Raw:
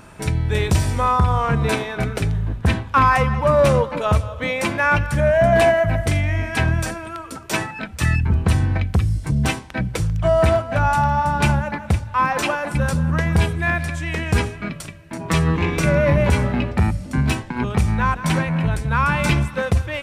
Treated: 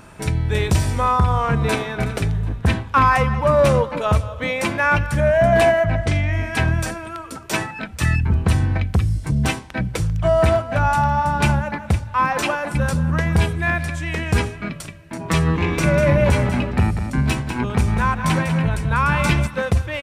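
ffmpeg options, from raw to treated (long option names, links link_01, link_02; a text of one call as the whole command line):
ffmpeg -i in.wav -filter_complex "[0:a]asplit=2[link_01][link_02];[link_02]afade=type=in:start_time=1.29:duration=0.01,afade=type=out:start_time=1.93:duration=0.01,aecho=0:1:370|740|1110:0.141254|0.0423761|0.0127128[link_03];[link_01][link_03]amix=inputs=2:normalize=0,asettb=1/sr,asplit=3[link_04][link_05][link_06];[link_04]atrim=end=5.844[link_07];[link_05]atrim=start=5.84:end=6.33,asetpts=PTS-STARTPTS,afade=type=in:duration=0.004:curve=qsin,afade=type=out:start_time=0.486:duration=0.004:curve=qsin,lowpass=6300[link_08];[link_06]atrim=start=6.326[link_09];[link_07][link_08]acrossfade=duration=0.004:curve1=hsin:curve2=qsin[link_10];[link_10][link_09]acrossfade=duration=0.004:curve1=qsin:curve2=hsin,asettb=1/sr,asplit=3[link_11][link_12][link_13];[link_11]atrim=end=15.514[link_14];[link_12]atrim=start=15.51:end=19.47,asetpts=PTS-STARTPTS,afade=type=in:duration=0.004:curve=qsin,afade=type=out:start_time=3.956:duration=0.004:curve=qsin,aecho=1:1:195:0.376,atrim=end_sample=174636[link_15];[link_13]atrim=start=19.466[link_16];[link_14][link_15]acrossfade=duration=0.004:curve1=hsin:curve2=qsin[link_17];[link_17][link_16]acrossfade=duration=0.004:curve1=qsin:curve2=hsin" out.wav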